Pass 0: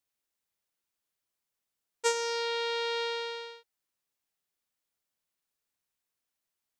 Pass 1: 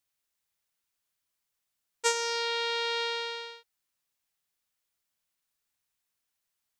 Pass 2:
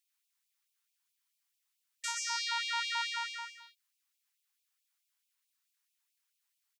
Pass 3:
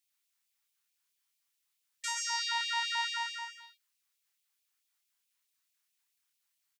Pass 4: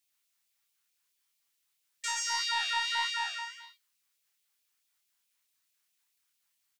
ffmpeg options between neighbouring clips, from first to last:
-af "equalizer=f=380:t=o:w=2.2:g=-5.5,volume=3.5dB"
-af "aecho=1:1:120:0.422,alimiter=limit=-19.5dB:level=0:latency=1:release=213,afftfilt=real='re*gte(b*sr/1024,740*pow(2300/740,0.5+0.5*sin(2*PI*4.6*pts/sr)))':imag='im*gte(b*sr/1024,740*pow(2300/740,0.5+0.5*sin(2*PI*4.6*pts/sr)))':win_size=1024:overlap=0.75"
-filter_complex "[0:a]asplit=2[a][b];[b]adelay=29,volume=-4dB[c];[a][c]amix=inputs=2:normalize=0"
-filter_complex "[0:a]asplit=2[a][b];[b]asoftclip=type=tanh:threshold=-30dB,volume=-9dB[c];[a][c]amix=inputs=2:normalize=0,flanger=delay=9.4:depth=9.3:regen=66:speed=1.6:shape=sinusoidal,volume=4.5dB"

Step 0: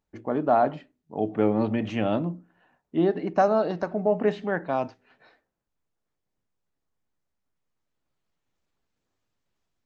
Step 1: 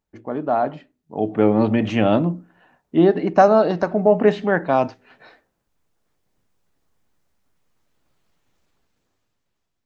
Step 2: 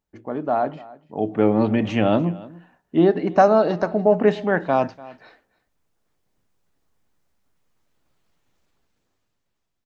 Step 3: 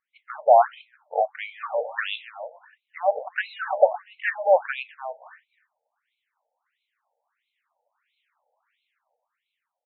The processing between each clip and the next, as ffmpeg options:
-af "dynaudnorm=f=240:g=11:m=13dB"
-af "aecho=1:1:293:0.0944,volume=-1.5dB"
-af "afftfilt=real='re*between(b*sr/1024,630*pow(3000/630,0.5+0.5*sin(2*PI*1.5*pts/sr))/1.41,630*pow(3000/630,0.5+0.5*sin(2*PI*1.5*pts/sr))*1.41)':imag='im*between(b*sr/1024,630*pow(3000/630,0.5+0.5*sin(2*PI*1.5*pts/sr))/1.41,630*pow(3000/630,0.5+0.5*sin(2*PI*1.5*pts/sr))*1.41)':win_size=1024:overlap=0.75,volume=8dB"

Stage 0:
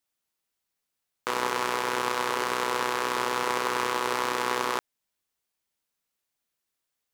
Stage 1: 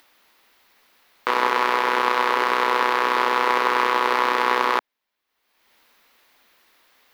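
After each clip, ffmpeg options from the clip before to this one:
-af "equalizer=f=125:t=o:w=1:g=-10,equalizer=f=250:t=o:w=1:g=5,equalizer=f=500:t=o:w=1:g=4,equalizer=f=1k:t=o:w=1:g=7,equalizer=f=2k:t=o:w=1:g=7,equalizer=f=4k:t=o:w=1:g=5,equalizer=f=8k:t=o:w=1:g=-9,acompressor=mode=upward:threshold=-41dB:ratio=2.5"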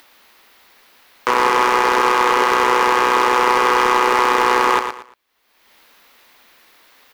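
-filter_complex "[0:a]asplit=2[a][b];[b]aeval=exprs='0.708*sin(PI/2*3.16*val(0)/0.708)':c=same,volume=-11dB[c];[a][c]amix=inputs=2:normalize=0,aecho=1:1:116|232|348:0.398|0.104|0.0269"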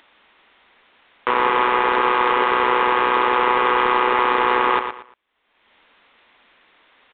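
-af "aresample=8000,aresample=44100,volume=-2.5dB"

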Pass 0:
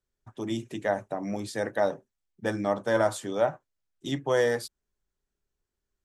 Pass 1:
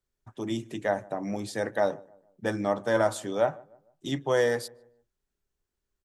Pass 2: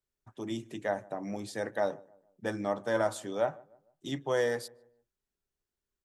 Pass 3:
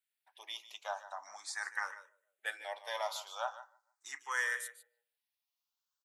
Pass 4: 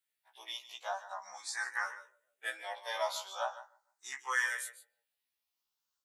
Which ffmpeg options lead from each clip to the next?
-filter_complex "[0:a]asplit=2[a][b];[b]adelay=151,lowpass=f=1.3k:p=1,volume=-23dB,asplit=2[c][d];[d]adelay=151,lowpass=f=1.3k:p=1,volume=0.42,asplit=2[e][f];[f]adelay=151,lowpass=f=1.3k:p=1,volume=0.42[g];[a][c][e][g]amix=inputs=4:normalize=0"
-af "lowshelf=f=72:g=-5.5,volume=-4.5dB"
-filter_complex "[0:a]highpass=f=970:w=0.5412,highpass=f=970:w=1.3066,aecho=1:1:149:0.188,asplit=2[a][b];[b]afreqshift=0.41[c];[a][c]amix=inputs=2:normalize=1,volume=5dB"
-af "afftfilt=real='re*1.73*eq(mod(b,3),0)':imag='im*1.73*eq(mod(b,3),0)':win_size=2048:overlap=0.75,volume=4.5dB"

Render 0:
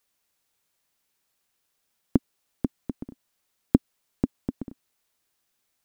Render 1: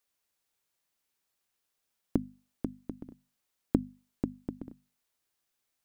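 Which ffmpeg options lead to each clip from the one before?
-af "bandreject=f=50:t=h:w=6,bandreject=f=100:t=h:w=6,bandreject=f=150:t=h:w=6,bandreject=f=200:t=h:w=6,bandreject=f=250:t=h:w=6,volume=-6dB"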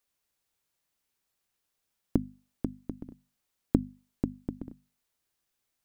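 -af "lowshelf=f=190:g=5.5"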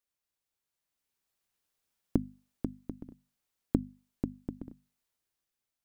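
-af "dynaudnorm=f=240:g=9:m=11.5dB,volume=-8.5dB"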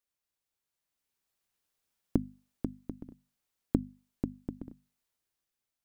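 -af anull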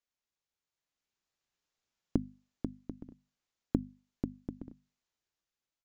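-af "aresample=16000,aresample=44100,volume=-2dB"

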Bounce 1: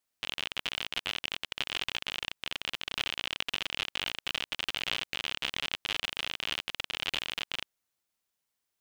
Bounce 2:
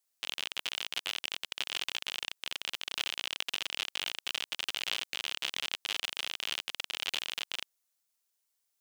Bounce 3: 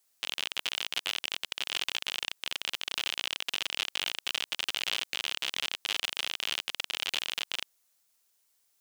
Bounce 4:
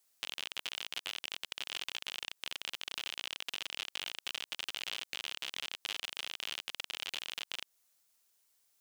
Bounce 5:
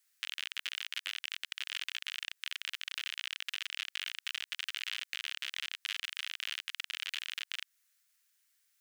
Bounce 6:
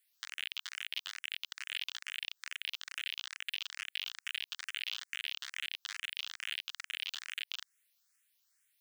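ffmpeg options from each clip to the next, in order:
-af "bass=f=250:g=-10,treble=f=4k:g=8,volume=-3.5dB"
-af "alimiter=limit=-22.5dB:level=0:latency=1:release=30,volume=8.5dB"
-af "acompressor=threshold=-35dB:ratio=2.5,volume=-1.5dB"
-af "highpass=f=1.7k:t=q:w=2.2,volume=-1.5dB"
-filter_complex "[0:a]asplit=2[a][b];[b]afreqshift=2.3[c];[a][c]amix=inputs=2:normalize=1,volume=1.5dB"

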